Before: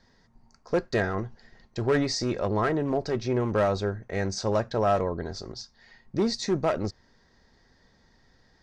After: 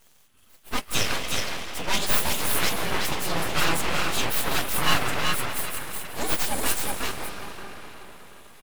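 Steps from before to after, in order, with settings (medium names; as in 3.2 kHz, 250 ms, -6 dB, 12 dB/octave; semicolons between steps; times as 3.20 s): frequency axis rescaled in octaves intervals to 126%; tilt shelf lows -9 dB, about 1.5 kHz; delay 372 ms -4 dB; reverberation RT60 4.7 s, pre-delay 116 ms, DRR 6 dB; full-wave rectifier; trim +9 dB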